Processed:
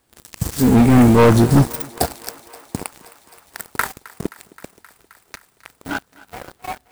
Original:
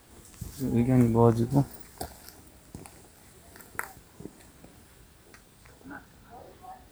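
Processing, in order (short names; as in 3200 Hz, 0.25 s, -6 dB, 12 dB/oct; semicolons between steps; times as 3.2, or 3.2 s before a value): low shelf 140 Hz -4 dB; sample leveller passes 5; on a send: thinning echo 0.263 s, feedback 82%, high-pass 360 Hz, level -20 dB; on the sum: gain +1.5 dB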